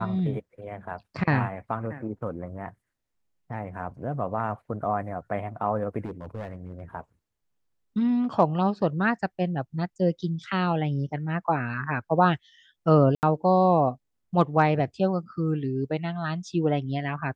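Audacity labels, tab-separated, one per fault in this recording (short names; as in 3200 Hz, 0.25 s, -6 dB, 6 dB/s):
6.050000	6.810000	clipped -30.5 dBFS
13.150000	13.230000	gap 79 ms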